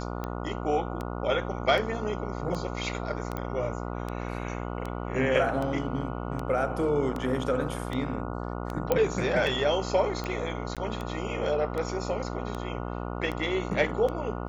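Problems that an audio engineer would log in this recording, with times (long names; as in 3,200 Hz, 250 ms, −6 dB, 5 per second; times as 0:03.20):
mains buzz 60 Hz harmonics 24 −34 dBFS
scratch tick 78 rpm −20 dBFS
0:03.37: click −19 dBFS
0:08.92: click −11 dBFS
0:10.75–0:10.77: drop-out 17 ms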